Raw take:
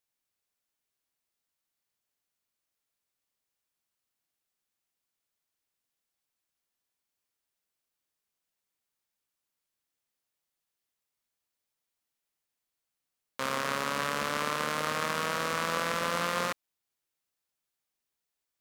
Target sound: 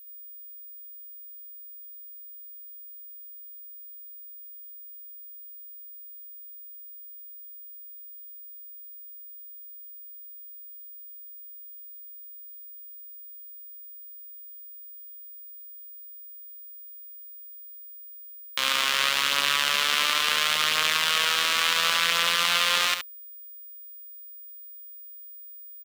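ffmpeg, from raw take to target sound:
-filter_complex "[0:a]equalizer=f=3200:t=o:w=1:g=9.5,atempo=0.72,tiltshelf=f=970:g=-9,aeval=exprs='val(0)+0.00631*sin(2*PI*15000*n/s)':c=same,asplit=2[s0][s1];[s1]aecho=0:1:71:0.376[s2];[s0][s2]amix=inputs=2:normalize=0"

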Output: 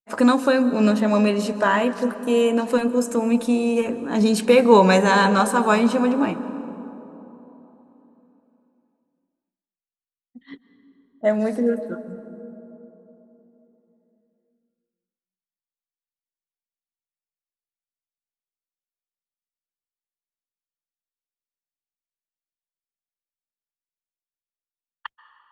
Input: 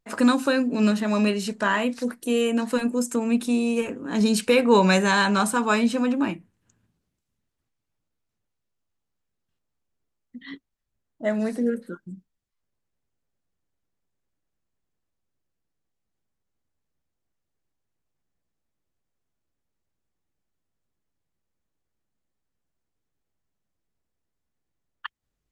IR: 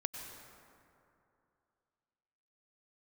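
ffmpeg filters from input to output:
-filter_complex "[0:a]agate=range=0.0224:threshold=0.0224:ratio=3:detection=peak,equalizer=f=700:w=0.78:g=7,asplit=2[s0][s1];[1:a]atrim=start_sample=2205,asetrate=31311,aresample=44100,lowshelf=f=480:g=6.5[s2];[s1][s2]afir=irnorm=-1:irlink=0,volume=0.335[s3];[s0][s3]amix=inputs=2:normalize=0,volume=0.668"

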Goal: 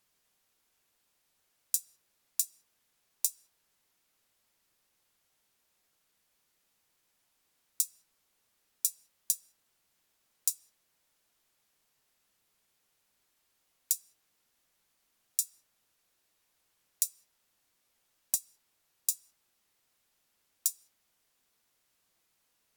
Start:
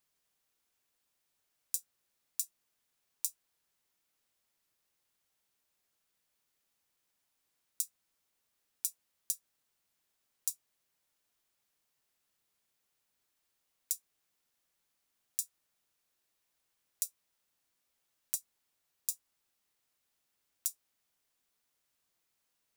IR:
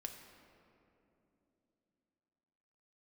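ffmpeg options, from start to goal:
-filter_complex "[0:a]asplit=2[s0][s1];[1:a]atrim=start_sample=2205,afade=t=out:st=0.26:d=0.01,atrim=end_sample=11907,highshelf=f=8200:g=-7.5[s2];[s1][s2]afir=irnorm=-1:irlink=0,volume=0.447[s3];[s0][s3]amix=inputs=2:normalize=0,volume=1.68" -ar 48000 -c:a libvorbis -b:a 128k

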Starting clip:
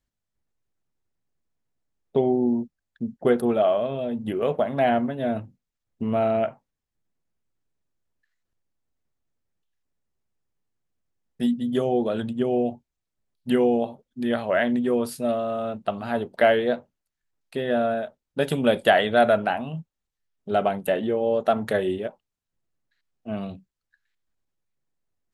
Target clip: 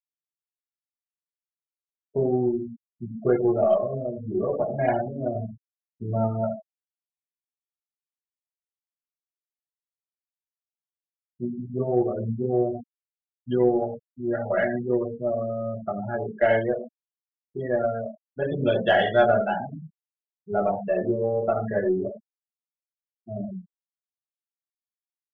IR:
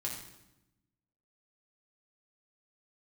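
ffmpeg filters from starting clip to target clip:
-filter_complex "[0:a]asplit=2[s0][s1];[s1]adelay=28,volume=0.2[s2];[s0][s2]amix=inputs=2:normalize=0[s3];[1:a]atrim=start_sample=2205,afade=t=out:st=0.19:d=0.01,atrim=end_sample=8820[s4];[s3][s4]afir=irnorm=-1:irlink=0,afftfilt=real='re*gte(hypot(re,im),0.0794)':imag='im*gte(hypot(re,im),0.0794)':win_size=1024:overlap=0.75,aeval=exprs='0.596*(cos(1*acos(clip(val(0)/0.596,-1,1)))-cos(1*PI/2))+0.00531*(cos(6*acos(clip(val(0)/0.596,-1,1)))-cos(6*PI/2))':c=same,volume=0.708"

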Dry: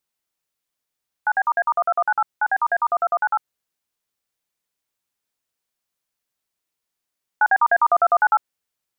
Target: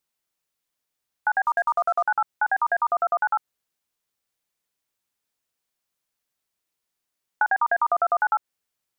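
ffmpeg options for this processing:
-filter_complex "[0:a]asettb=1/sr,asplit=3[s0][s1][s2];[s0]atrim=end=1.454[s3];[s1]atrim=start=1.45:end=2.06,asetpts=PTS-STARTPTS,afade=t=in:d=0.004:c=qsin,afade=t=out:st=0.606:d=0.004:c=qsin,aeval=exprs='0.251*(cos(1*acos(clip(val(0)/0.251,-1,1)))-cos(1*PI/2))+0.00141*(cos(7*acos(clip(val(0)/0.251,-1,1)))-cos(7*PI/2))+0.00251*(cos(8*acos(clip(val(0)/0.251,-1,1)))-cos(8*PI/2))':c=same[s4];[s2]atrim=start=2.056[s5];[s3][s4]acrossfade=d=0.004:c1=hsin:c2=qsin[s6];[s6][s5]acrossfade=d=0.004:c1=qsin:c2=hsin,acompressor=threshold=0.126:ratio=6"

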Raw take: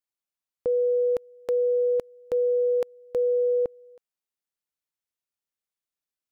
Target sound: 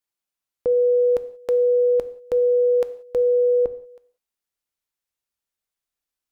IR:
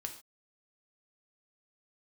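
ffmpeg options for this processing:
-filter_complex "[0:a]asplit=2[s0][s1];[s1]asubboost=boost=4:cutoff=89[s2];[1:a]atrim=start_sample=2205,asetrate=35280,aresample=44100[s3];[s2][s3]afir=irnorm=-1:irlink=0,volume=0.708[s4];[s0][s4]amix=inputs=2:normalize=0"

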